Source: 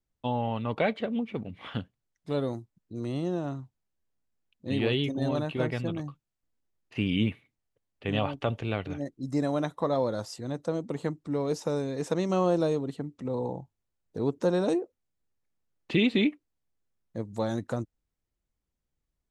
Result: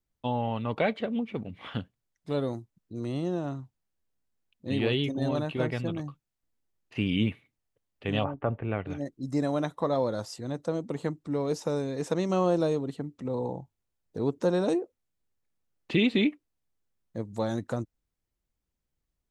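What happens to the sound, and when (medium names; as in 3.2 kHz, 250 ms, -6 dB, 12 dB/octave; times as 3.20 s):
8.23–8.86 s: low-pass 1.4 kHz -> 2.5 kHz 24 dB/octave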